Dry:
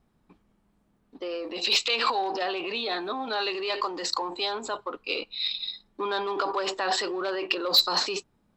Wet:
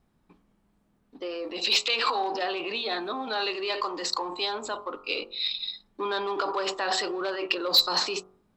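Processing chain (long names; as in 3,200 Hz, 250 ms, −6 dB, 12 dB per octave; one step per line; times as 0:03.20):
hum removal 46.77 Hz, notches 30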